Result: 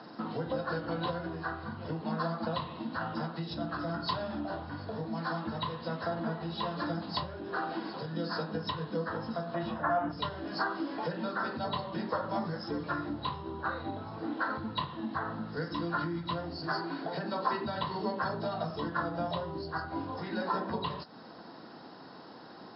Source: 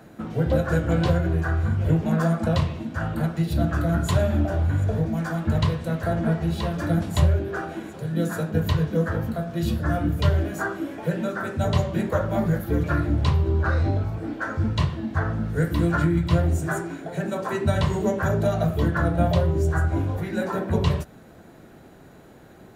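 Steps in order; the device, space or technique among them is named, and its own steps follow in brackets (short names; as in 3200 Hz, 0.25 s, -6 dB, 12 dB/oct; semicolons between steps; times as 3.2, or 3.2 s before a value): 9.54–10.12 EQ curve 450 Hz 0 dB, 650 Hz +12 dB, 2200 Hz +5 dB, 5000 Hz -13 dB; hearing aid with frequency lowering (nonlinear frequency compression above 3800 Hz 4:1; compressor 2.5:1, threshold -32 dBFS, peak gain reduction 12.5 dB; speaker cabinet 280–5300 Hz, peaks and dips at 390 Hz -7 dB, 600 Hz -6 dB, 1000 Hz +6 dB, 1600 Hz -3 dB, 2300 Hz -10 dB); gain +3.5 dB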